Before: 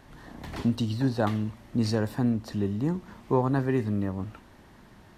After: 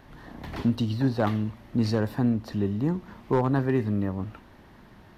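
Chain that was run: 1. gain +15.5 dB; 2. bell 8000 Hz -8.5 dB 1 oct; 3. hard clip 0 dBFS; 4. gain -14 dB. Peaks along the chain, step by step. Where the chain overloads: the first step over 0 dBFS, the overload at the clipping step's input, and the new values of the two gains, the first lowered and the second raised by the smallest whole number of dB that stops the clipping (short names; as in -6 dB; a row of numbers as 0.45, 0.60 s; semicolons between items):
+5.0, +5.0, 0.0, -14.0 dBFS; step 1, 5.0 dB; step 1 +10.5 dB, step 4 -9 dB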